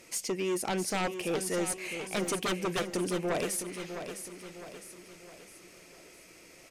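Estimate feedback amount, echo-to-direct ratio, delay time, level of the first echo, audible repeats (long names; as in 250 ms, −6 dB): 46%, −8.0 dB, 658 ms, −9.0 dB, 4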